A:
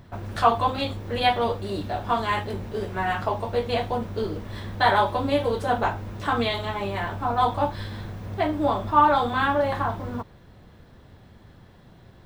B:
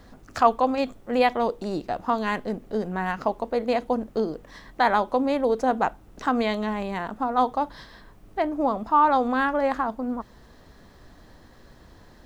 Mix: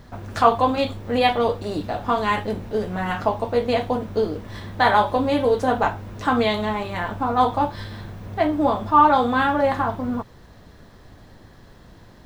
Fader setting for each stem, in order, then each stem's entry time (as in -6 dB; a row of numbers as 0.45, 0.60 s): -0.5, +1.0 dB; 0.00, 0.00 s